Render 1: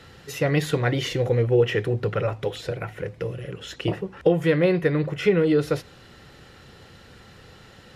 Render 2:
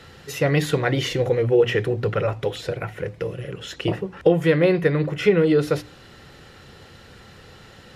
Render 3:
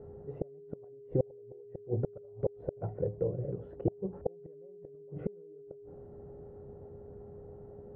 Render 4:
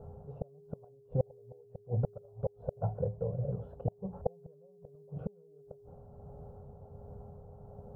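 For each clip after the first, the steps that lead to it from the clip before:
mains-hum notches 60/120/180/240/300 Hz; level +2.5 dB
gate with flip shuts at −13 dBFS, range −38 dB; steady tone 410 Hz −44 dBFS; Chebyshev low-pass filter 690 Hz, order 3; level −3.5 dB
phaser with its sweep stopped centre 830 Hz, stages 4; amplitude tremolo 1.4 Hz, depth 37%; level +6 dB

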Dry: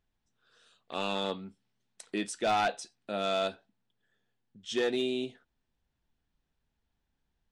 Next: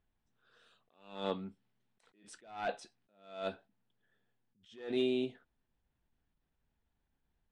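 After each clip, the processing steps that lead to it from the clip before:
low-pass filter 9,000 Hz
parametric band 6,400 Hz −10 dB 1.5 octaves
level that may rise only so fast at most 110 dB per second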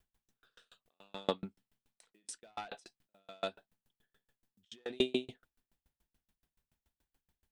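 high-shelf EQ 3,200 Hz +10 dB
tremolo with a ramp in dB decaying 7 Hz, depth 37 dB
level +7 dB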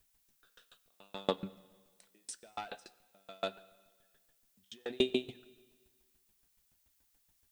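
background noise blue −75 dBFS
on a send at −16.5 dB: convolution reverb RT60 1.5 s, pre-delay 6 ms
on the sum: level +1 dB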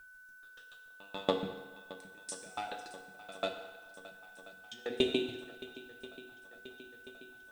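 feedback echo with a long and a short gap by turns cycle 1,033 ms, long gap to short 1.5 to 1, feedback 62%, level −18 dB
feedback delay network reverb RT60 1.2 s, low-frequency decay 0.75×, high-frequency decay 0.85×, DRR 4 dB
steady tone 1,500 Hz −54 dBFS
level +1 dB

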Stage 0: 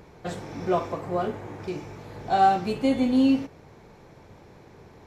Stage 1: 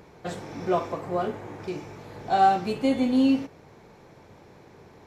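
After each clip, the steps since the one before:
low-shelf EQ 81 Hz −8 dB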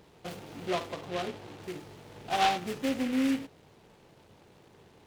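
short delay modulated by noise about 2,100 Hz, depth 0.1 ms
level −7 dB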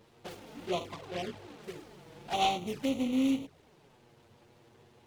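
flanger swept by the level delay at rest 10.1 ms, full sweep at −28.5 dBFS

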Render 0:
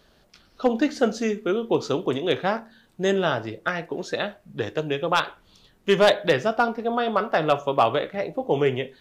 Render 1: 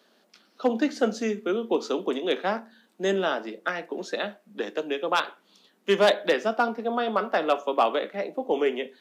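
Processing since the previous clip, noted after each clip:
Butterworth high-pass 190 Hz 72 dB per octave
level −2.5 dB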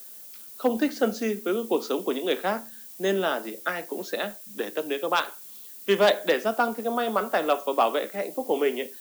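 background noise violet −44 dBFS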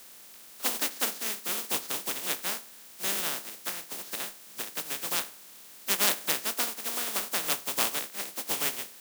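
compressing power law on the bin magnitudes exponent 0.18
level −5.5 dB

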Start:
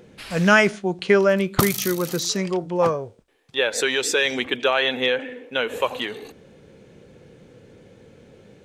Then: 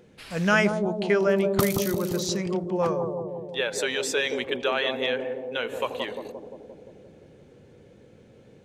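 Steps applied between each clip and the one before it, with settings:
bucket-brigade delay 174 ms, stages 1,024, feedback 67%, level −4 dB
level −6 dB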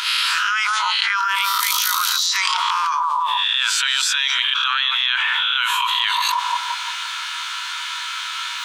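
peak hold with a rise ahead of every peak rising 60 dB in 0.42 s
Chebyshev high-pass with heavy ripple 940 Hz, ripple 9 dB
envelope flattener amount 100%
level +3.5 dB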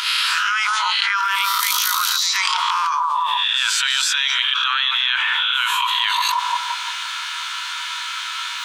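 backwards echo 126 ms −13.5 dB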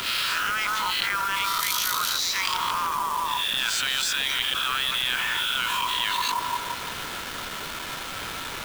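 hold until the input has moved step −22 dBFS
level −6 dB

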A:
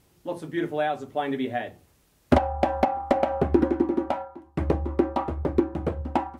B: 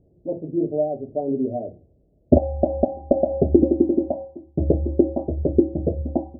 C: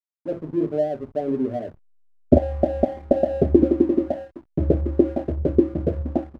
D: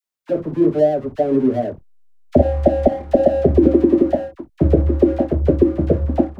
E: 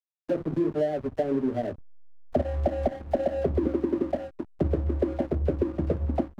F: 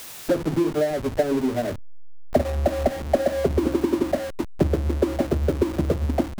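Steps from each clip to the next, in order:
Chebyshev low-pass filter 650 Hz, order 5; level +5.5 dB
slack as between gear wheels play −36 dBFS
all-pass dispersion lows, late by 41 ms, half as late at 930 Hz; boost into a limiter +8.5 dB; level −1 dB
downward compressor 4 to 1, threshold −24 dBFS, peak gain reduction 14 dB; slack as between gear wheels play −31.5 dBFS
converter with a step at zero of −27 dBFS; transient designer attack +5 dB, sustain −2 dB

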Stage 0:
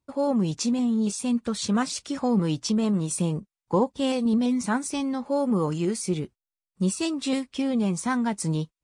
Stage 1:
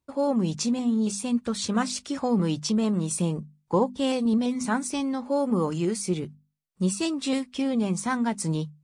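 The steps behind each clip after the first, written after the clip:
mains-hum notches 50/100/150/200/250 Hz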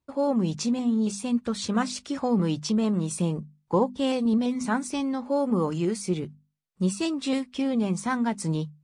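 high-shelf EQ 6,900 Hz −7 dB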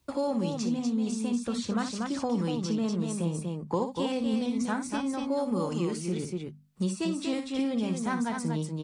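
loudspeakers that aren't time-aligned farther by 20 metres −10 dB, 82 metres −6 dB
multiband upward and downward compressor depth 70%
level −5.5 dB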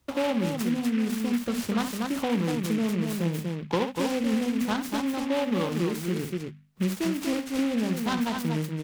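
short delay modulated by noise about 2,000 Hz, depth 0.078 ms
level +2.5 dB

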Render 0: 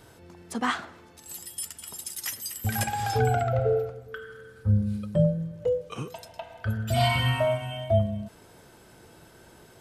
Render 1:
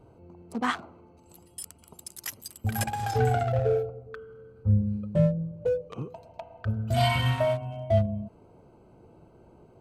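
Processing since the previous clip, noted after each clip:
adaptive Wiener filter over 25 samples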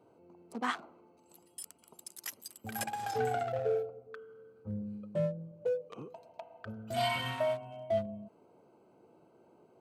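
high-pass filter 240 Hz 12 dB per octave
level −5.5 dB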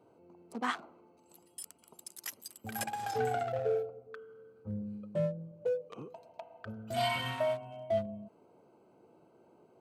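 no processing that can be heard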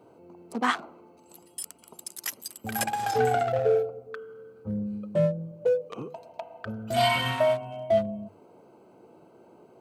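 mains-hum notches 50/100/150 Hz
level +8.5 dB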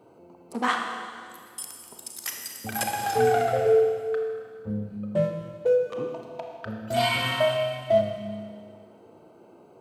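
four-comb reverb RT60 2 s, combs from 26 ms, DRR 2.5 dB

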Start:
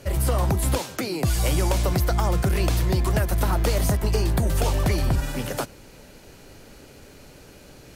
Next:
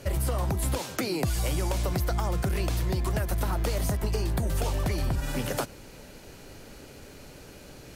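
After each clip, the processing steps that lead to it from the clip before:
downward compressor, threshold −24 dBFS, peak gain reduction 7 dB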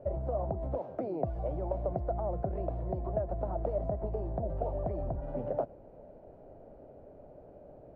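low-pass with resonance 650 Hz, resonance Q 4.9
level −9 dB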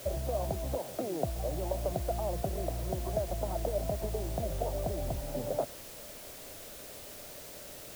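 bit-depth reduction 8 bits, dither triangular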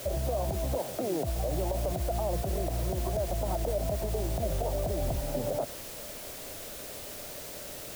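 brickwall limiter −26.5 dBFS, peak gain reduction 10 dB
level +5 dB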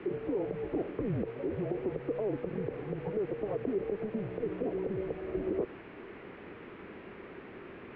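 single-sideband voice off tune −210 Hz 320–2,600 Hz

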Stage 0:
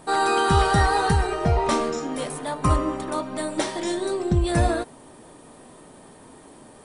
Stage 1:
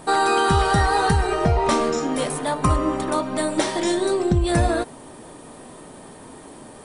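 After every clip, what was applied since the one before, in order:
downward compressor 2.5 to 1, threshold −22 dBFS, peak gain reduction 6 dB
level +5.5 dB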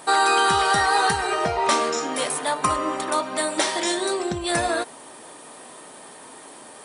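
high-pass filter 980 Hz 6 dB per octave
level +4 dB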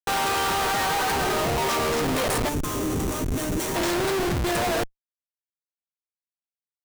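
comparator with hysteresis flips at −26 dBFS
gain on a spectral selection 0:02.49–0:03.76, 490–5,500 Hz −8 dB

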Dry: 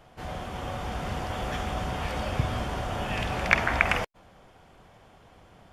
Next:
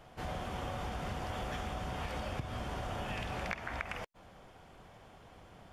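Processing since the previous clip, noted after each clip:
downward compressor 16 to 1, threshold −33 dBFS, peak gain reduction 20 dB
level −1.5 dB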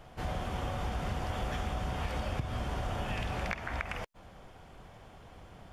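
low-shelf EQ 97 Hz +6.5 dB
level +2 dB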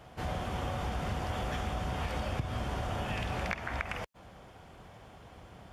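high-pass filter 49 Hz
level +1 dB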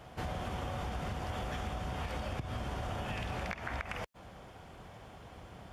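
downward compressor, threshold −35 dBFS, peak gain reduction 8 dB
level +1 dB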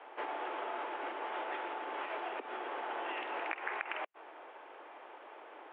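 single-sideband voice off tune +130 Hz 240–2,800 Hz
level +2 dB

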